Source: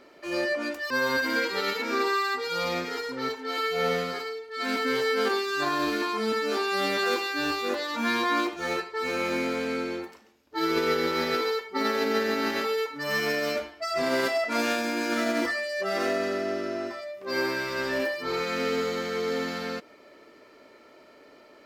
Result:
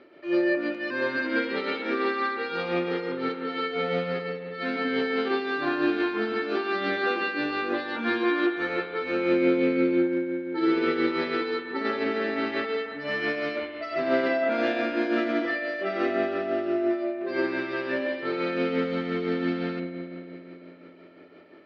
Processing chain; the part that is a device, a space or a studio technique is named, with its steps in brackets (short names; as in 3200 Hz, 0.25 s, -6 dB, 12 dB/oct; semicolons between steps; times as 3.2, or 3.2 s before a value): combo amplifier with spring reverb and tremolo (spring tank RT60 3.3 s, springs 57 ms, chirp 75 ms, DRR 3.5 dB; tremolo 5.8 Hz, depth 42%; speaker cabinet 100–3600 Hz, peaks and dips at 100 Hz +6 dB, 340 Hz +8 dB, 980 Hz -6 dB)